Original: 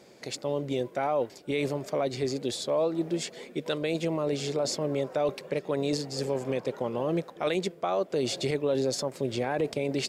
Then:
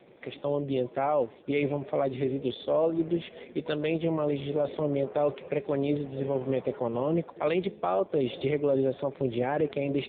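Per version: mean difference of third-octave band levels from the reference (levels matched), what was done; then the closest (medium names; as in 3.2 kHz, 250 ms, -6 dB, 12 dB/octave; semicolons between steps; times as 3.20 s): 6.5 dB: de-hum 210.3 Hz, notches 25; trim +2 dB; AMR-NB 5.9 kbps 8 kHz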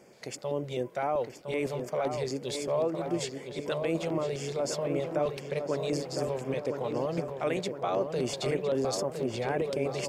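3.5 dB: LFO notch square 3.9 Hz 290–3900 Hz; on a send: filtered feedback delay 1010 ms, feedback 57%, low-pass 2.5 kHz, level -6 dB; on the sum: trim -1.5 dB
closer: second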